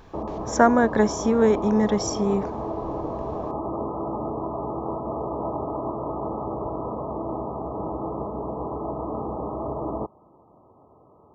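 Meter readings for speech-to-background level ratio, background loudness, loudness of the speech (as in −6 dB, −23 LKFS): 9.0 dB, −30.5 LKFS, −21.5 LKFS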